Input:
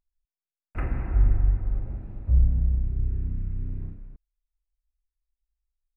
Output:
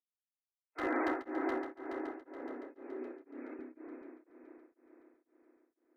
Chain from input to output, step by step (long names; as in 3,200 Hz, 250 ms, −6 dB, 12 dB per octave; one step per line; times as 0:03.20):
Butterworth high-pass 270 Hz 96 dB per octave
noise gate with hold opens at −49 dBFS
0:01.58–0:03.66: compressor whose output falls as the input rises −56 dBFS, ratio −1
spectral peaks only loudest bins 64
flanger 0.42 Hz, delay 2 ms, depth 1.3 ms, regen +83%
hard clipping −38.5 dBFS, distortion −16 dB
echo machine with several playback heads 141 ms, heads second and third, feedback 63%, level −9 dB
tremolo along a rectified sine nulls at 2 Hz
level +15 dB